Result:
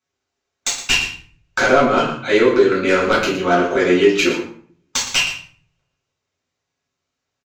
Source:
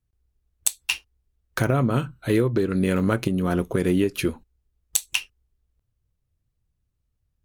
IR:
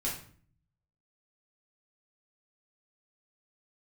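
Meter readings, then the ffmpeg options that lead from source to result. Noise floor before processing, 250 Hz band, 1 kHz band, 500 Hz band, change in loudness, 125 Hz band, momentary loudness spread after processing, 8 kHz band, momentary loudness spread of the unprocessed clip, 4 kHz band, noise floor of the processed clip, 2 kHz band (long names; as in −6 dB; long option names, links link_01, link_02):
−76 dBFS, +3.5 dB, +13.0 dB, +10.5 dB, +7.5 dB, −6.5 dB, 11 LU, +4.5 dB, 6 LU, +11.5 dB, −80 dBFS, +12.5 dB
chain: -filter_complex "[0:a]highpass=550,aresample=16000,aeval=exprs='0.473*sin(PI/2*3.98*val(0)/0.473)':channel_layout=same,aresample=44100,aeval=exprs='0.75*(cos(1*acos(clip(val(0)/0.75,-1,1)))-cos(1*PI/2))+0.0944*(cos(3*acos(clip(val(0)/0.75,-1,1)))-cos(3*PI/2))':channel_layout=same,aecho=1:1:117:0.251[link_01];[1:a]atrim=start_sample=2205[link_02];[link_01][link_02]afir=irnorm=-1:irlink=0,volume=-2dB"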